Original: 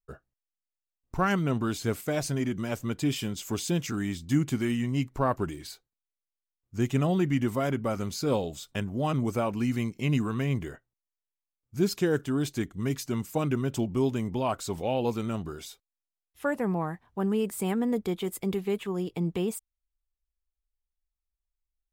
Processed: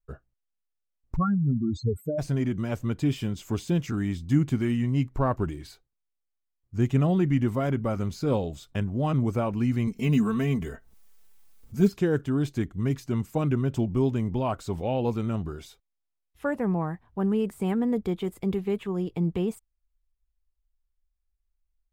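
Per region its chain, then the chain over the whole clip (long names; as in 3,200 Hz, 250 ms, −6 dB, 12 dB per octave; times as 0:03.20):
0:01.15–0:02.18: expanding power law on the bin magnitudes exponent 4 + surface crackle 33 per second −58 dBFS
0:09.87–0:11.92: high-shelf EQ 6,300 Hz +10.5 dB + comb filter 4.5 ms, depth 74% + upward compression, threshold −36 dBFS
whole clip: high-shelf EQ 3,600 Hz −8.5 dB; de-essing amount 100%; low-shelf EQ 120 Hz +10.5 dB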